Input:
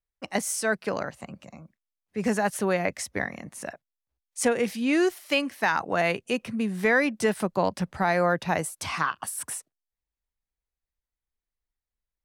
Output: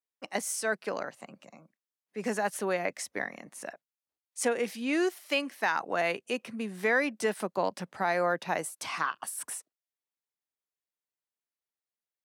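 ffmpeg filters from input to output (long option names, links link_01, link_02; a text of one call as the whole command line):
ffmpeg -i in.wav -af "highpass=260,volume=-4dB" out.wav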